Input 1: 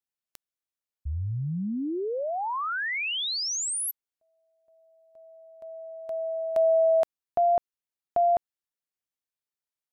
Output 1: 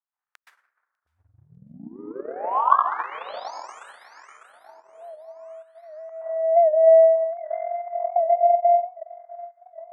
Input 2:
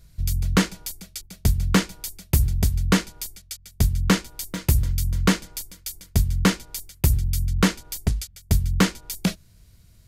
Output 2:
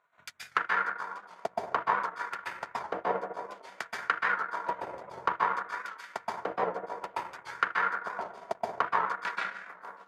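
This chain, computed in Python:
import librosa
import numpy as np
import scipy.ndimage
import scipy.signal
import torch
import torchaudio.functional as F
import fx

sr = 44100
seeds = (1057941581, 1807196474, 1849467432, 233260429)

p1 = fx.wiener(x, sr, points=9)
p2 = scipy.signal.sosfilt(scipy.signal.butter(2, 470.0, 'highpass', fs=sr, output='sos'), p1)
p3 = fx.high_shelf(p2, sr, hz=8600.0, db=7.0)
p4 = p3 + fx.echo_alternate(p3, sr, ms=299, hz=1900.0, feedback_pct=67, wet_db=-14.0, dry=0)
p5 = fx.hpss(p4, sr, part='harmonic', gain_db=8)
p6 = fx.env_lowpass_down(p5, sr, base_hz=1000.0, full_db=-18.0)
p7 = fx.over_compress(p6, sr, threshold_db=-26.0, ratio=-0.5)
p8 = p6 + (p7 * librosa.db_to_amplitude(1.5))
p9 = 10.0 ** (-8.5 / 20.0) * np.tanh(p8 / 10.0 ** (-8.5 / 20.0))
p10 = fx.wah_lfo(p9, sr, hz=0.57, low_hz=640.0, high_hz=1600.0, q=2.6)
p11 = fx.rev_plate(p10, sr, seeds[0], rt60_s=1.4, hf_ratio=0.35, predelay_ms=115, drr_db=-7.0)
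p12 = fx.transient(p11, sr, attack_db=10, sustain_db=-11)
p13 = fx.record_warp(p12, sr, rpm=78.0, depth_cents=100.0)
y = p13 * librosa.db_to_amplitude(-8.0)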